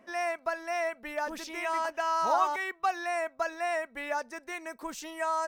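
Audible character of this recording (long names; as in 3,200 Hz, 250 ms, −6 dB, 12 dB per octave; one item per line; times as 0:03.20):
background noise floor −60 dBFS
spectral slope −5.5 dB per octave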